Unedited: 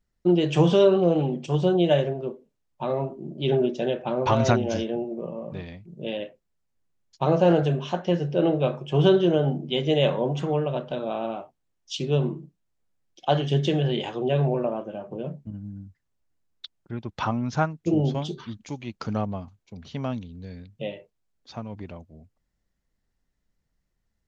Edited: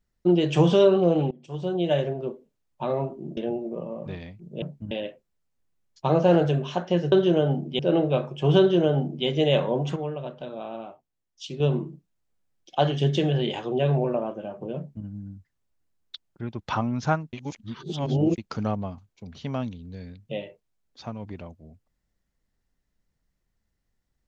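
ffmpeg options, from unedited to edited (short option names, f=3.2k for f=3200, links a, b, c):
-filter_complex "[0:a]asplit=11[a][b][c][d][e][f][g][h][i][j][k];[a]atrim=end=1.31,asetpts=PTS-STARTPTS,afade=t=out:st=1.306:d=0.004:c=hsin:silence=0.0668344[l];[b]atrim=start=1.31:end=3.372,asetpts=PTS-STARTPTS,afade=t=in:d=0.89:silence=0.0668344[m];[c]atrim=start=4.828:end=6.082[n];[d]atrim=start=15.268:end=15.562[o];[e]atrim=start=6.078:end=8.292[p];[f]atrim=start=9.088:end=9.762[q];[g]atrim=start=8.288:end=10.462[r];[h]atrim=start=10.458:end=12.102,asetpts=PTS-STARTPTS,volume=-6.5dB[s];[i]atrim=start=12.098:end=17.832[t];[j]atrim=start=17.828:end=18.882,asetpts=PTS-STARTPTS,areverse[u];[k]atrim=start=18.878[v];[l][m]concat=n=2:v=0:a=1[w];[w][n]acrossfade=d=0.004:c1=hsin:c2=hsin[x];[x][o]acrossfade=d=0.004:c1=hsin:c2=hsin[y];[y][p]acrossfade=d=0.004:c1=hsin:c2=hsin[z];[z][q]acrossfade=d=0.004:c1=hsin:c2=hsin[aa];[aa][r]acrossfade=d=0.004:c1=hsin:c2=hsin[ab];[ab][s]acrossfade=d=0.004:c1=hsin:c2=hsin[ac];[ac][t]acrossfade=d=0.004:c1=hsin:c2=hsin[ad];[ad][u]acrossfade=d=0.004:c1=hsin:c2=hsin[ae];[ae][v]acrossfade=d=0.004:c1=hsin:c2=hsin"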